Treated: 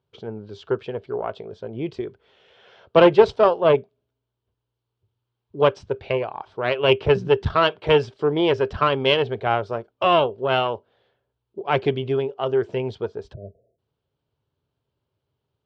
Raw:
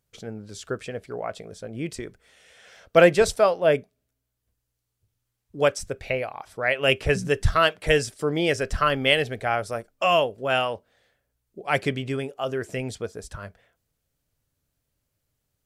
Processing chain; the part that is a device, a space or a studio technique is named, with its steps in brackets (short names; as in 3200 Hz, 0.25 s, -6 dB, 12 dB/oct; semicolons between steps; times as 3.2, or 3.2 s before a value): bell 2500 Hz -4 dB 0.48 oct; guitar amplifier (tube stage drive 13 dB, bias 0.7; tone controls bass +5 dB, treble -3 dB; speaker cabinet 110–4100 Hz, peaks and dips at 180 Hz -6 dB, 270 Hz -4 dB, 390 Hz +9 dB, 940 Hz +7 dB, 1900 Hz -8 dB, 3000 Hz +4 dB); spectral delete 13.33–13.79, 710–8300 Hz; gain +4.5 dB